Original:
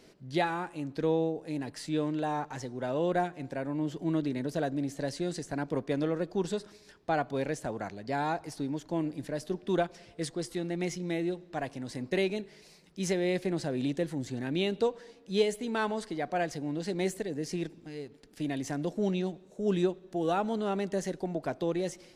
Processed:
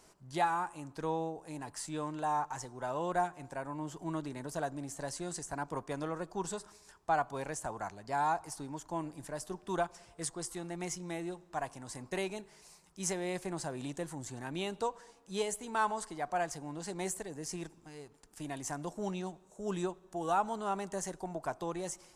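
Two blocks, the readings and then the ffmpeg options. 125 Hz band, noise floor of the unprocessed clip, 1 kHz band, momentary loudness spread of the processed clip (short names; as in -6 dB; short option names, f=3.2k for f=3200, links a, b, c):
-7.5 dB, -57 dBFS, +1.5 dB, 10 LU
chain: -af "equalizer=f=125:t=o:w=1:g=-5,equalizer=f=250:t=o:w=1:g=-9,equalizer=f=500:t=o:w=1:g=-8,equalizer=f=1k:t=o:w=1:g=8,equalizer=f=2k:t=o:w=1:g=-6,equalizer=f=4k:t=o:w=1:g=-8,equalizer=f=8k:t=o:w=1:g=8"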